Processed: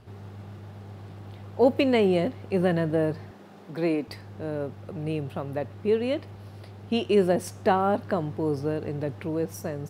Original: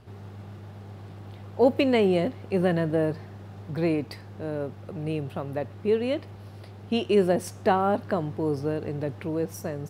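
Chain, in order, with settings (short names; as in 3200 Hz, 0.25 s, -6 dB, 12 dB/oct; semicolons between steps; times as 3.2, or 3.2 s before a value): 3.31–4.08 HPF 180 Hz 24 dB/oct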